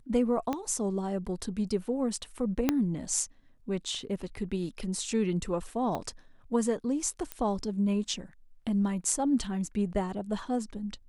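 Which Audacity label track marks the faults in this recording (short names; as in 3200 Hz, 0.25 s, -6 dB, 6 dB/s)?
0.530000	0.530000	pop -18 dBFS
2.690000	2.690000	pop -10 dBFS
5.950000	5.950000	pop -20 dBFS
7.320000	7.320000	pop -18 dBFS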